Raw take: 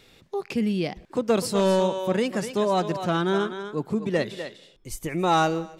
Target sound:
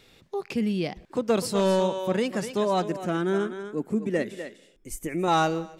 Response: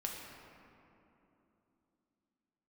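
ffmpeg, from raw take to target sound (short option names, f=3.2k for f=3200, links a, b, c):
-filter_complex "[0:a]asettb=1/sr,asplit=3[a][b][c];[a]atrim=end=2.844[d];[b]atrim=start=2.84:end=5.28,asetpts=PTS-STARTPTS,afade=t=in:d=0.004:c=qsin,afade=t=out:st=2.436:d=0.004:c=qsin,equalizer=f=125:t=o:w=1:g=-8,equalizer=f=250:t=o:w=1:g=5,equalizer=f=1k:t=o:w=1:g=-7,equalizer=f=2k:t=o:w=1:g=3,equalizer=f=4k:t=o:w=1:g=-11,equalizer=f=8k:t=o:w=1:g=4[e];[c]atrim=start=5.276[f];[d][e]acrossfade=d=0.004:c1=hsin:c2=qsin[g];[g][f]acrossfade=d=0.004:c1=qsin:c2=hsin,volume=-1.5dB"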